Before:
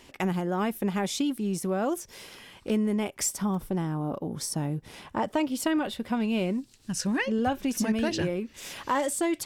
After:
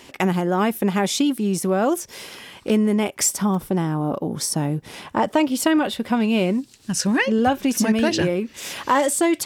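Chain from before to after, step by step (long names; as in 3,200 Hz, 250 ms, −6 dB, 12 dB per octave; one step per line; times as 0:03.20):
high-pass filter 120 Hz 6 dB per octave
level +8.5 dB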